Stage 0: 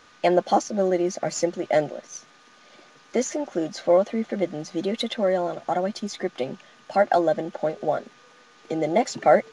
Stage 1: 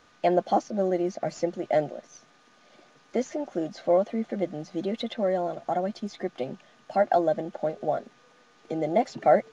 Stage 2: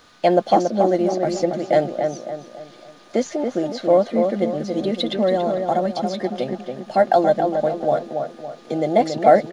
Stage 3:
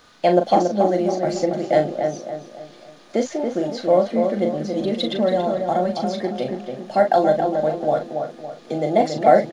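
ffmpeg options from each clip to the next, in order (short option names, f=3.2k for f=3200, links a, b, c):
-filter_complex "[0:a]equalizer=f=690:w=4:g=4.5,acrossover=split=5700[a][b];[b]acompressor=threshold=-54dB:ratio=4:attack=1:release=60[c];[a][c]amix=inputs=2:normalize=0,lowshelf=f=440:g=5.5,volume=-7dB"
-filter_complex "[0:a]aexciter=amount=2.1:drive=2.4:freq=3.5k,asplit=2[a][b];[b]adelay=280,lowpass=f=1.9k:p=1,volume=-5dB,asplit=2[c][d];[d]adelay=280,lowpass=f=1.9k:p=1,volume=0.43,asplit=2[e][f];[f]adelay=280,lowpass=f=1.9k:p=1,volume=0.43,asplit=2[g][h];[h]adelay=280,lowpass=f=1.9k:p=1,volume=0.43,asplit=2[i][j];[j]adelay=280,lowpass=f=1.9k:p=1,volume=0.43[k];[c][e][g][i][k]amix=inputs=5:normalize=0[l];[a][l]amix=inputs=2:normalize=0,volume=6.5dB"
-filter_complex "[0:a]asplit=2[a][b];[b]adelay=39,volume=-7dB[c];[a][c]amix=inputs=2:normalize=0,volume=-1dB"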